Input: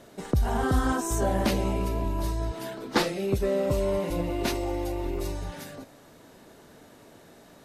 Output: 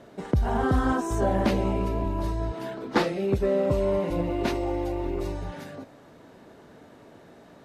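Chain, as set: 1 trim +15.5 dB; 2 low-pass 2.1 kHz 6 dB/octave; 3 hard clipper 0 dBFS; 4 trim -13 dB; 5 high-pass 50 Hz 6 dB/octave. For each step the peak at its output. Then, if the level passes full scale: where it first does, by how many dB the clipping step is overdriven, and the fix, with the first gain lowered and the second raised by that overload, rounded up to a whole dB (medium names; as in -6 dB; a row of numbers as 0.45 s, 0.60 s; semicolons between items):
+4.5 dBFS, +3.5 dBFS, 0.0 dBFS, -13.0 dBFS, -12.0 dBFS; step 1, 3.5 dB; step 1 +11.5 dB, step 4 -9 dB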